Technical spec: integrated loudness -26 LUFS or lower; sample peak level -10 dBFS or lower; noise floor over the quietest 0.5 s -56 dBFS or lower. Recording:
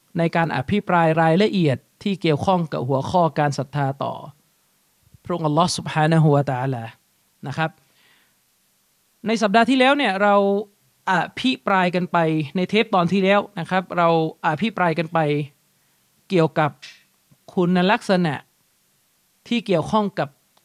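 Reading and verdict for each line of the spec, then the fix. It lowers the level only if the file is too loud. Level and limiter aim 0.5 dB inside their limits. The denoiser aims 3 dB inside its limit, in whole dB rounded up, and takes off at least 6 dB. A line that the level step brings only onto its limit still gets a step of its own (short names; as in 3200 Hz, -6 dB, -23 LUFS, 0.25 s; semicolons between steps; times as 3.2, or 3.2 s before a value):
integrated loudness -20.5 LUFS: fail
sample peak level -3.5 dBFS: fail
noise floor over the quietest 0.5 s -64 dBFS: OK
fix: gain -6 dB; limiter -10.5 dBFS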